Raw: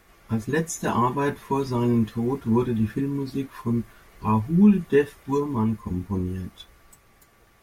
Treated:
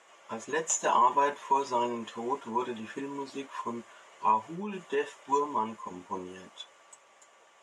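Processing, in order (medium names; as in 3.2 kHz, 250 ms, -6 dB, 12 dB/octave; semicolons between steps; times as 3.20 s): tracing distortion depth 0.023 ms; peak limiter -16 dBFS, peak gain reduction 7.5 dB; cabinet simulation 500–8200 Hz, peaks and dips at 580 Hz +9 dB, 960 Hz +8 dB, 3 kHz +7 dB, 4.5 kHz -6 dB, 7.1 kHz +10 dB; trim -2 dB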